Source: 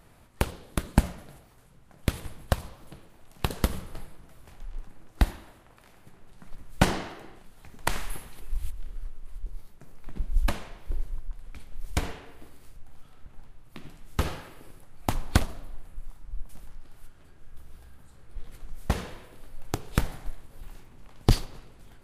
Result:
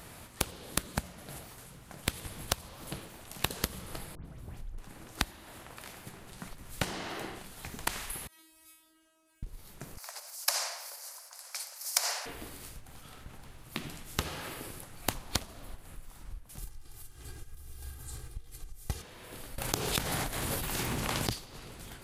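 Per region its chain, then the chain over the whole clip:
0:04.15–0:04.78: drawn EQ curve 130 Hz 0 dB, 860 Hz −12 dB, 5,300 Hz −18 dB + leveller curve on the samples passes 1 + all-pass dispersion highs, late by 101 ms, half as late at 2,200 Hz
0:08.27–0:09.43: high-pass filter 180 Hz + tuned comb filter 320 Hz, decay 0.6 s, mix 100%
0:09.97–0:12.26: high shelf with overshoot 4,100 Hz +6.5 dB, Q 3 + downward compressor 2.5 to 1, threshold −27 dBFS + Butterworth high-pass 570 Hz 48 dB per octave
0:16.58–0:19.02: bass and treble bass +9 dB, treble +8 dB + comb filter 2.5 ms, depth 75%
0:19.58–0:21.33: high-pass filter 64 Hz 6 dB per octave + envelope flattener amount 70%
whole clip: downward compressor 16 to 1, threshold −36 dBFS; high-pass filter 59 Hz 6 dB per octave; high-shelf EQ 2,500 Hz +8 dB; level +7 dB

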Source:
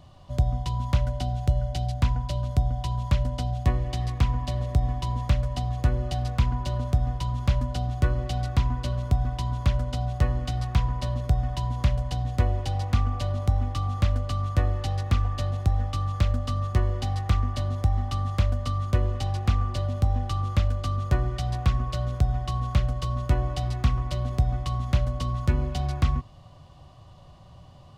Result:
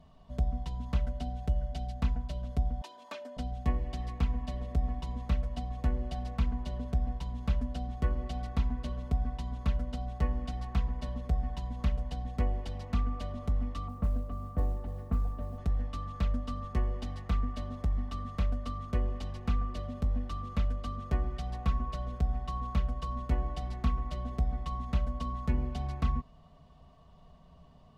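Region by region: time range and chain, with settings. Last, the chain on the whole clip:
0:02.81–0:03.37: high-pass filter 360 Hz 24 dB per octave + comb filter 3.3 ms, depth 70%
0:13.88–0:15.58: low-pass filter 1,000 Hz + noise that follows the level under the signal 33 dB
whole clip: high-shelf EQ 2,600 Hz −10 dB; comb filter 4.5 ms, depth 99%; level −7.5 dB

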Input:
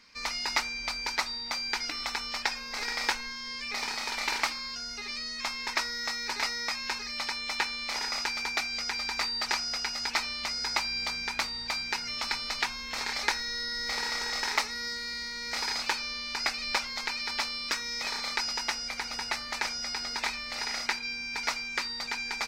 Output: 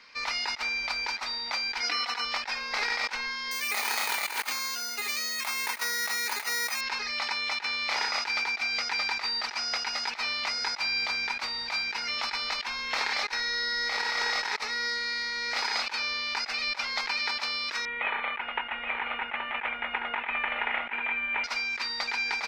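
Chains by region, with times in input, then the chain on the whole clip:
0:01.82–0:02.25: high-pass filter 270 Hz + comb filter 4.1 ms, depth 94%
0:03.51–0:06.81: high-pass filter 120 Hz + bad sample-rate conversion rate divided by 4×, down filtered, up zero stuff
0:17.85–0:21.44: Butterworth low-pass 3,200 Hz 72 dB per octave + single-tap delay 825 ms −6.5 dB
whole clip: three-way crossover with the lows and the highs turned down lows −13 dB, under 390 Hz, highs −14 dB, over 4,600 Hz; mains-hum notches 60/120 Hz; compressor whose output falls as the input rises −35 dBFS, ratio −0.5; level +5.5 dB

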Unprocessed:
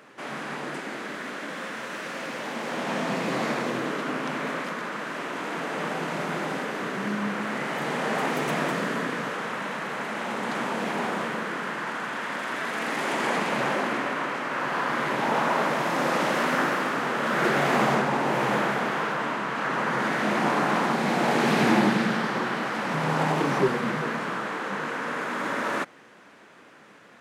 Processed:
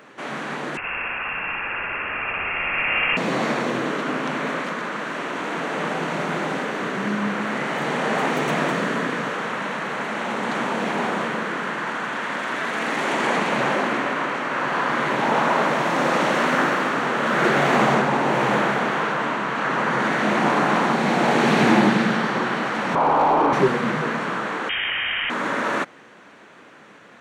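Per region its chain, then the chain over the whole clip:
0:00.77–0:03.17: voice inversion scrambler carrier 3,000 Hz + flutter between parallel walls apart 10.4 metres, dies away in 1.3 s
0:22.95–0:23.53: Chebyshev low-pass with heavy ripple 3,300 Hz, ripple 9 dB + hard clipping −31 dBFS + flat-topped bell 590 Hz +12.5 dB 2.9 octaves
0:24.69–0:25.30: voice inversion scrambler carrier 3,400 Hz + envelope flattener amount 100%
whole clip: parametric band 12,000 Hz −10.5 dB 0.56 octaves; notch filter 5,000 Hz, Q 10; level +4.5 dB

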